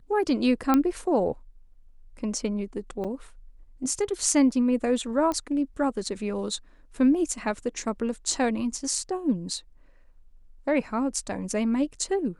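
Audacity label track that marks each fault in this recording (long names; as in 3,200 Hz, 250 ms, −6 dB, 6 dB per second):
0.740000	0.740000	click −9 dBFS
3.040000	3.050000	drop-out 6.6 ms
5.320000	5.320000	click −17 dBFS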